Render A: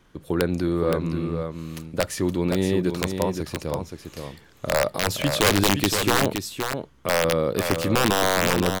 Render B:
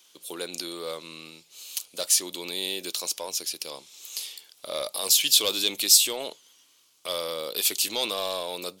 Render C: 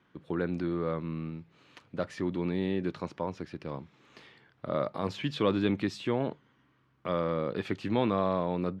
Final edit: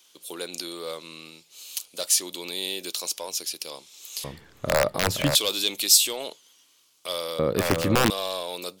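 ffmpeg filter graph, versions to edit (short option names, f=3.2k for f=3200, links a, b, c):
-filter_complex "[0:a]asplit=2[a][b];[1:a]asplit=3[c][d][e];[c]atrim=end=4.242[f];[a]atrim=start=4.238:end=5.352[g];[d]atrim=start=5.348:end=7.392[h];[b]atrim=start=7.388:end=8.102[i];[e]atrim=start=8.098[j];[f][g]acrossfade=d=0.004:c1=hsin:c2=hsin[k];[k][h]acrossfade=d=0.004:c1=hsin:c2=hsin[l];[l][i]acrossfade=d=0.004:c1=hsin:c2=hsin[m];[m][j]acrossfade=d=0.004:c1=hsin:c2=hsin"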